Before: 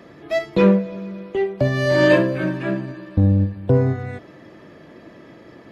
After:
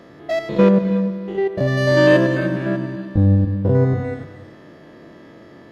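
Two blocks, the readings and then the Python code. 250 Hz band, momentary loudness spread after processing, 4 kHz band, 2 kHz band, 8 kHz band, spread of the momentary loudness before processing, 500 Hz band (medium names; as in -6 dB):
+2.0 dB, 11 LU, +1.0 dB, +1.0 dB, no reading, 13 LU, +1.5 dB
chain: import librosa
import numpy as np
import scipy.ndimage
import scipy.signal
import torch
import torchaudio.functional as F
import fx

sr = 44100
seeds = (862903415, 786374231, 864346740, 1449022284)

y = fx.spec_steps(x, sr, hold_ms=100)
y = fx.peak_eq(y, sr, hz=2400.0, db=-5.5, octaves=0.22)
y = fx.rev_gated(y, sr, seeds[0], gate_ms=340, shape='rising', drr_db=11.0)
y = y * librosa.db_to_amplitude(2.0)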